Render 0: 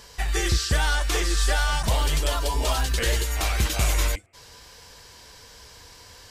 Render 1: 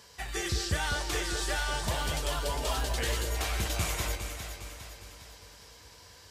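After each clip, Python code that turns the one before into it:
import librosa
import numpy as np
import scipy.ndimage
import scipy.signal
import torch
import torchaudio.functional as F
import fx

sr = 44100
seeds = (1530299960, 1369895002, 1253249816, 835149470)

y = scipy.signal.sosfilt(scipy.signal.butter(4, 62.0, 'highpass', fs=sr, output='sos'), x)
y = fx.echo_alternate(y, sr, ms=203, hz=900.0, feedback_pct=71, wet_db=-4.5)
y = y * 10.0 ** (-7.0 / 20.0)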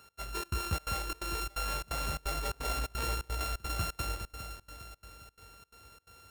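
y = np.r_[np.sort(x[:len(x) // 32 * 32].reshape(-1, 32), axis=1).ravel(), x[len(x) // 32 * 32:]]
y = fx.step_gate(y, sr, bpm=173, pattern='x.xxx.xx', floor_db=-24.0, edge_ms=4.5)
y = y * 10.0 ** (-3.0 / 20.0)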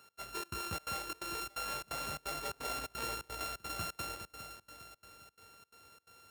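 y = scipy.signal.sosfilt(scipy.signal.bessel(2, 160.0, 'highpass', norm='mag', fs=sr, output='sos'), x)
y = y * 10.0 ** (-3.0 / 20.0)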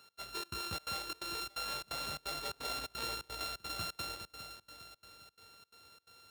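y = fx.peak_eq(x, sr, hz=3900.0, db=9.0, octaves=0.5)
y = y * 10.0 ** (-2.0 / 20.0)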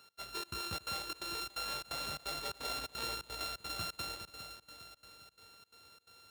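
y = x + 10.0 ** (-19.5 / 20.0) * np.pad(x, (int(284 * sr / 1000.0), 0))[:len(x)]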